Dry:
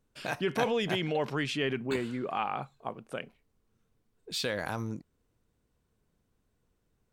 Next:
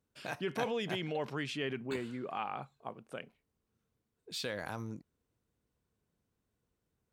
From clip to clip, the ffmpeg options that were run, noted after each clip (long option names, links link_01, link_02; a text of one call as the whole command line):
ffmpeg -i in.wav -af "highpass=51,volume=-6dB" out.wav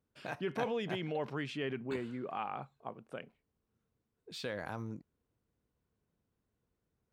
ffmpeg -i in.wav -af "highshelf=frequency=3600:gain=-9.5" out.wav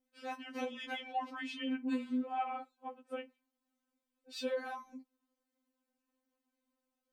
ffmpeg -i in.wav -af "afftfilt=real='re*3.46*eq(mod(b,12),0)':imag='im*3.46*eq(mod(b,12),0)':win_size=2048:overlap=0.75,volume=2dB" out.wav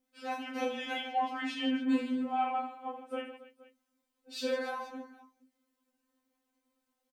ffmpeg -i in.wav -af "aecho=1:1:30|78|154.8|277.7|474.3:0.631|0.398|0.251|0.158|0.1,volume=3.5dB" out.wav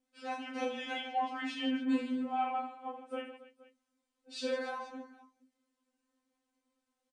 ffmpeg -i in.wav -af "aresample=22050,aresample=44100,volume=-2dB" out.wav